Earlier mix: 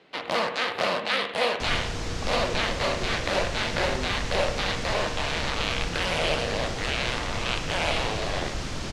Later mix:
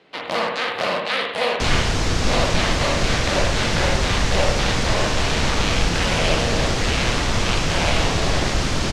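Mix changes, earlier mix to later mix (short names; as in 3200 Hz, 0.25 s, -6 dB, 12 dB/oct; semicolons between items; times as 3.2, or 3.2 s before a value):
first sound: send +8.0 dB; second sound +11.0 dB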